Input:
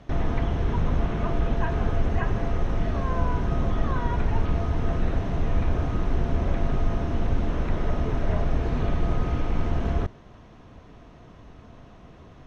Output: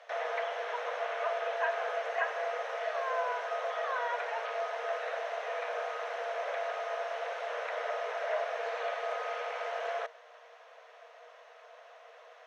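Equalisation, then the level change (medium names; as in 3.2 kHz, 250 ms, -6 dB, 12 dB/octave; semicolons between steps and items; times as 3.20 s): rippled Chebyshev high-pass 460 Hz, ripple 6 dB; +3.5 dB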